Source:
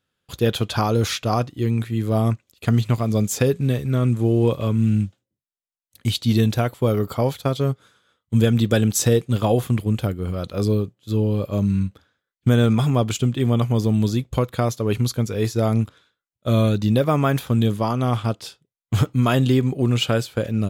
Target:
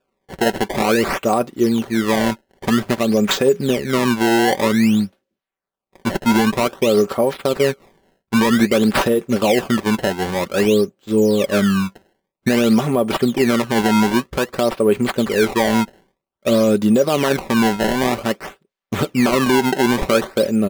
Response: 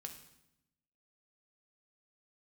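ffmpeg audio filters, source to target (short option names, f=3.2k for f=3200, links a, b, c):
-af "equalizer=f=125:t=o:w=1:g=-8,equalizer=f=250:t=o:w=1:g=5,equalizer=f=500:t=o:w=1:g=5,equalizer=f=4k:t=o:w=1:g=-5,equalizer=f=8k:t=o:w=1:g=6,acrusher=samples=21:mix=1:aa=0.000001:lfo=1:lforange=33.6:lforate=0.52,bass=f=250:g=-5,treble=f=4k:g=-4,alimiter=limit=-12dB:level=0:latency=1:release=62,aecho=1:1:5.2:0.43,volume=5dB"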